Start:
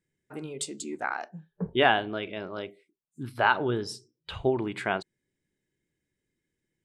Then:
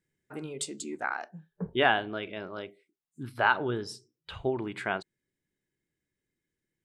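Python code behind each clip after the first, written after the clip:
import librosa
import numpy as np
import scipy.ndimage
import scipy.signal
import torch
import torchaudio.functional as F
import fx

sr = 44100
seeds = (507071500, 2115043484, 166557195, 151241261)

y = fx.peak_eq(x, sr, hz=1500.0, db=2.5, octaves=0.77)
y = fx.rider(y, sr, range_db=5, speed_s=2.0)
y = y * librosa.db_to_amplitude(-5.5)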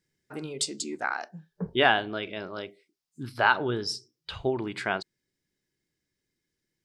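y = fx.peak_eq(x, sr, hz=5000.0, db=10.0, octaves=0.73)
y = y * librosa.db_to_amplitude(2.0)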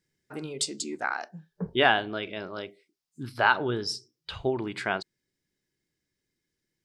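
y = x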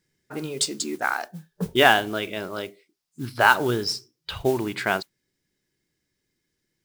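y = fx.mod_noise(x, sr, seeds[0], snr_db=20)
y = y * librosa.db_to_amplitude(5.0)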